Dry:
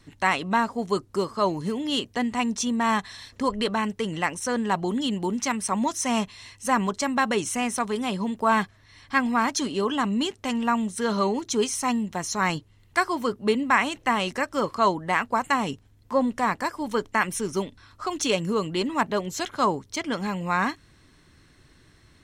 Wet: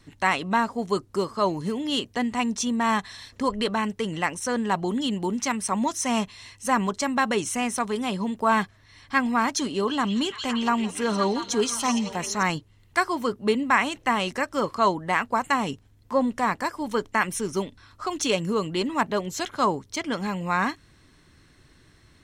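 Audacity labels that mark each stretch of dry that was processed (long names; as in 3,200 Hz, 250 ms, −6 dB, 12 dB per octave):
9.700000	12.430000	echo through a band-pass that steps 171 ms, band-pass from 4,600 Hz, each repeat −0.7 octaves, level −1 dB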